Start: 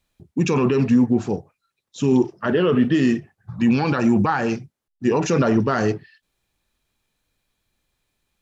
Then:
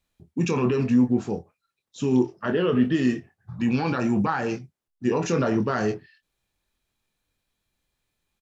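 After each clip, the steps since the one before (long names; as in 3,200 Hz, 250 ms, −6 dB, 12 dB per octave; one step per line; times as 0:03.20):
double-tracking delay 24 ms −8 dB
level −5 dB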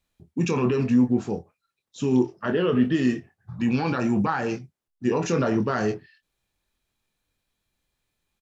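no processing that can be heard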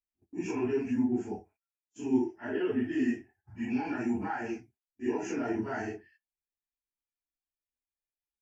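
random phases in long frames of 100 ms
phaser with its sweep stopped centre 780 Hz, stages 8
noise gate −55 dBFS, range −18 dB
level −6 dB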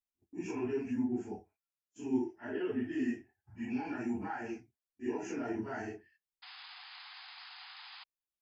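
sound drawn into the spectrogram noise, 0:06.42–0:08.04, 710–5,100 Hz −46 dBFS
level −5 dB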